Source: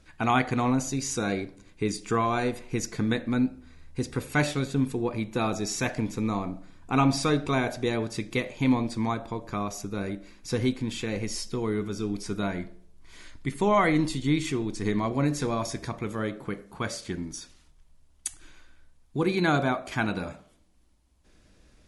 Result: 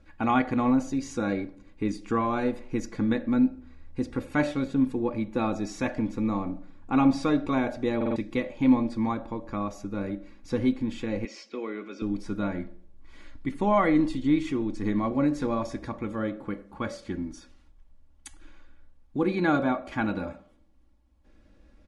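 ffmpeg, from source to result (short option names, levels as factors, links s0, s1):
-filter_complex "[0:a]asettb=1/sr,asplit=3[s0][s1][s2];[s0]atrim=end=11.254[s3];[s1]atrim=start=11.25:end=12.02,asetpts=PTS-STARTPTS,afade=t=in:d=0.004:c=qsin,afade=t=out:st=0.766:d=0.004:c=qsin,highpass=f=290:w=0.5412,highpass=f=290:w=1.3066,equalizer=f=310:t=q:w=4:g=-6,equalizer=f=870:t=q:w=4:g=-6,equalizer=f=2400:t=q:w=4:g=10,lowpass=f=6400:w=0.5412,lowpass=f=6400:w=1.3066[s4];[s2]atrim=start=12.016[s5];[s3][s4]acrossfade=d=0.004:c1=hsin:c2=qsin[s6];[s6][s5]acrossfade=d=0.004:c1=qsin:c2=hsin,asplit=5[s7][s8][s9][s10][s11];[s7]atrim=end=8.012[s12];[s8]atrim=start=7.958:end=8.012[s13];[s9]atrim=start=7.958:end=8.012[s14];[s10]atrim=start=7.958:end=8.012[s15];[s11]atrim=start=8.158[s16];[s12][s13]acrossfade=d=0.004:c1=hsin:c2=hsin[s17];[s17][s14]acrossfade=d=0.004:c1=hsin:c2=hsin[s18];[s18][s15]acrossfade=d=0.004:c1=hsin:c2=hsin[s19];[s19][s16]acrossfade=d=0.004:c1=hsin:c2=hsin,lowpass=f=1400:p=1,aecho=1:1:3.6:0.54"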